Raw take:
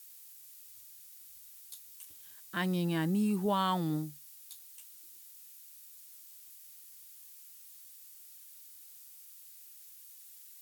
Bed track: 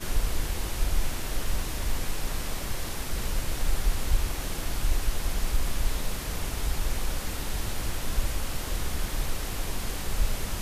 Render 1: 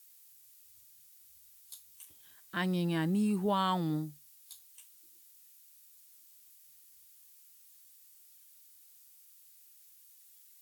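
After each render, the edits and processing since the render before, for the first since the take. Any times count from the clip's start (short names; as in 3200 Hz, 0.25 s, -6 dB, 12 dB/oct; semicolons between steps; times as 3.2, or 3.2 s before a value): noise print and reduce 6 dB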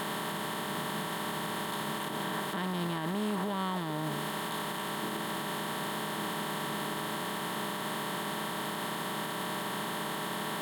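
per-bin compression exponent 0.2; limiter -25 dBFS, peak gain reduction 11 dB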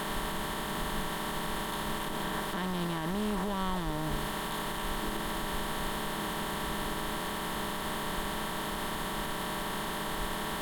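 add bed track -15 dB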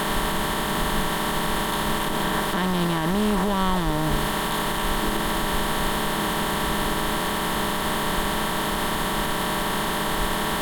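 gain +10 dB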